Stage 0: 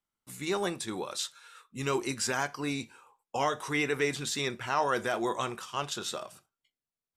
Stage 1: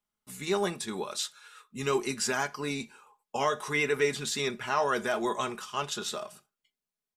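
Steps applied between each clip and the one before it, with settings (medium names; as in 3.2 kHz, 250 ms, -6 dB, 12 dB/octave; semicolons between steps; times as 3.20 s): comb 4.8 ms, depth 53%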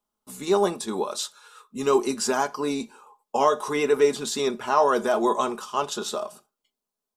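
graphic EQ 125/250/500/1000/2000 Hz -9/+5/+4/+6/-9 dB; trim +3.5 dB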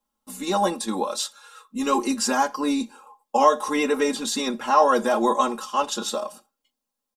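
comb 3.7 ms, depth 91%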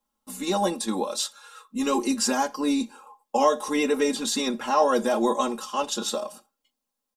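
dynamic bell 1.2 kHz, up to -6 dB, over -34 dBFS, Q 0.98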